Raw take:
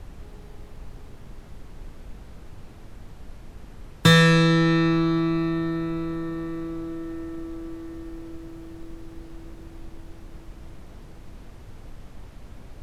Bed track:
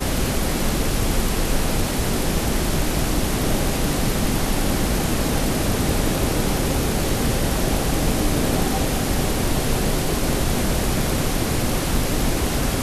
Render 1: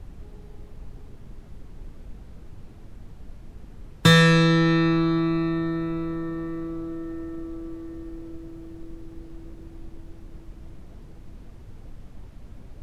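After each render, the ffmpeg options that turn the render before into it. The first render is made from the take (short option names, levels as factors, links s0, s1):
-af "afftdn=nr=6:nf=-45"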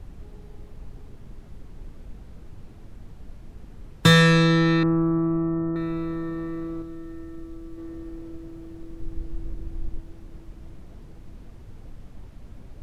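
-filter_complex "[0:a]asettb=1/sr,asplit=3[s0][s1][s2];[s0]atrim=end=4.834[s3];[s1]atrim=start=4.83:end=5.76,asetpts=PTS-STARTPTS,afade=t=in:d=0.004:c=qsin,afade=t=out:st=0.926:d=0.004:c=qsin,lowpass=f=1200:w=0.5412,lowpass=f=1200:w=1.3066[s4];[s2]atrim=start=5.756[s5];[s3][s4]acrossfade=d=0.004:c1=hsin:c2=qsin[s6];[s6][s5]acrossfade=d=0.004:c1=qsin:c2=hsin,asettb=1/sr,asplit=3[s7][s8][s9];[s7]atrim=end=6.824[s10];[s8]atrim=start=6.82:end=7.78,asetpts=PTS-STARTPTS,afade=t=in:d=0.004:c=qsin,afade=t=out:st=0.956:d=0.004:c=qsin,equalizer=f=610:w=0.33:g=-6.5[s11];[s9]atrim=start=7.776[s12];[s10][s11]acrossfade=d=0.004:c1=hsin:c2=qsin[s13];[s13][s12]acrossfade=d=0.004:c1=qsin:c2=hsin,asettb=1/sr,asplit=3[s14][s15][s16];[s14]atrim=end=9.004[s17];[s15]atrim=start=9:end=9.99,asetpts=PTS-STARTPTS,afade=t=in:d=0.004:c=qsin,afade=t=out:st=0.986:d=0.004:c=qsin,lowshelf=f=87:g=12[s18];[s16]atrim=start=9.986[s19];[s17][s18]acrossfade=d=0.004:c1=hsin:c2=qsin[s20];[s20][s19]acrossfade=d=0.004:c1=qsin:c2=hsin"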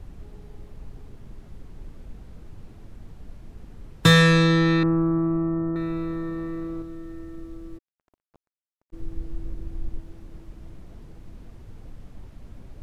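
-filter_complex "[0:a]asplit=3[s0][s1][s2];[s0]afade=t=out:st=7.77:d=0.02[s3];[s1]acrusher=bits=3:mix=0:aa=0.5,afade=t=in:st=7.77:d=0.02,afade=t=out:st=8.92:d=0.02[s4];[s2]afade=t=in:st=8.92:d=0.02[s5];[s3][s4][s5]amix=inputs=3:normalize=0"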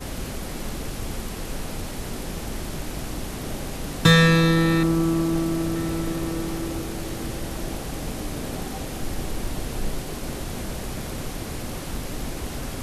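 -filter_complex "[1:a]volume=0.299[s0];[0:a][s0]amix=inputs=2:normalize=0"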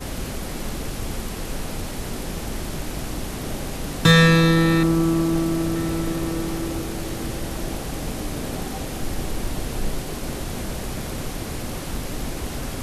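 -af "volume=1.26,alimiter=limit=0.708:level=0:latency=1"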